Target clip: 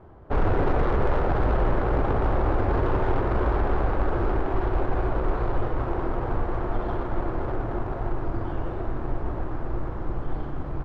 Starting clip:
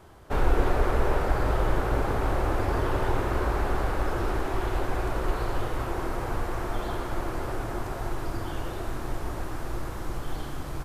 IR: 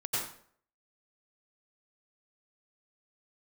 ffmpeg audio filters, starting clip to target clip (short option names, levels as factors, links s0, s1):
-af "aeval=exprs='0.119*(abs(mod(val(0)/0.119+3,4)-2)-1)':c=same,adynamicsmooth=sensitivity=1:basefreq=1200,volume=1.58"